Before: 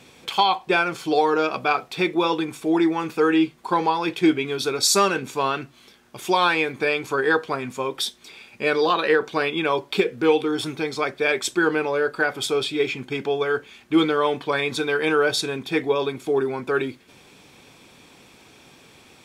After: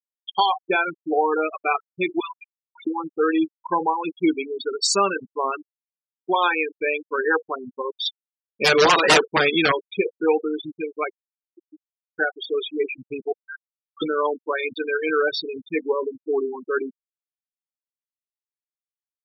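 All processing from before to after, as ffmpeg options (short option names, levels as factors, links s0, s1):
-filter_complex "[0:a]asettb=1/sr,asplit=3[s0][s1][s2];[s0]atrim=end=2.204[s3];[s1]atrim=start=2.2:end=2.87,asetpts=PTS-STARTPTS,afade=t=in:d=0.004:c=qsin,afade=t=out:st=0.666:d=0.004:c=qsin,highpass=f=1200:w=0.5412,highpass=f=1200:w=1.3066,acrossover=split=3700[s4][s5];[s5]acompressor=threshold=0.00794:ratio=4:attack=1:release=60[s6];[s4][s6]amix=inputs=2:normalize=0[s7];[s2]atrim=start=2.866[s8];[s3][s7]acrossfade=d=0.004:c1=hsin:c2=qsin[s9];[s9][s8]acrossfade=d=0.004:c1=qsin:c2=hsin,asettb=1/sr,asplit=3[s10][s11][s12];[s10]atrim=end=8.054[s13];[s11]atrim=start=8.05:end=9.72,asetpts=PTS-STARTPTS,afade=t=in:d=0.004:c=qsin,afade=t=out:st=1.666:d=0.004:c=qsin,acontrast=85,aeval=exprs='(mod(2.37*val(0)+1,2)-1)/2.37':c=same[s14];[s12]atrim=start=9.716[s15];[s13][s14]acrossfade=d=0.004:c1=hsin:c2=qsin[s16];[s16][s15]acrossfade=d=0.004:c1=qsin:c2=hsin,asettb=1/sr,asplit=3[s17][s18][s19];[s17]atrim=end=11.124[s20];[s18]atrim=start=11.12:end=12.16,asetpts=PTS-STARTPTS,afade=t=in:d=0.004:c=qsin,afade=t=out:st=1.036:d=0.004:c=qsin,acompressor=threshold=0.0282:ratio=20:attack=3.2:release=140:knee=1:detection=peak,asuperpass=centerf=220:order=12:qfactor=1.1[s21];[s19]atrim=start=12.156[s22];[s20][s21]acrossfade=d=0.004:c1=hsin:c2=qsin[s23];[s23][s22]acrossfade=d=0.004:c1=qsin:c2=hsin,asettb=1/sr,asplit=3[s24][s25][s26];[s24]atrim=end=13.324[s27];[s25]atrim=start=13.32:end=14.02,asetpts=PTS-STARTPTS,afade=t=in:d=0.004:c=qsin,afade=t=out:st=0.696:d=0.004:c=qsin,highpass=1500,highshelf=f=4000:g=-7,adynamicsmooth=sensitivity=1.5:basefreq=2100[s28];[s26]atrim=start=14.016[s29];[s27][s28]acrossfade=d=0.004:c1=hsin:c2=qsin[s30];[s30][s29]acrossfade=d=0.004:c1=qsin:c2=hsin,afftfilt=real='re*gte(hypot(re,im),0.178)':imag='im*gte(hypot(re,im),0.178)':win_size=1024:overlap=0.75,highpass=f=250:p=1"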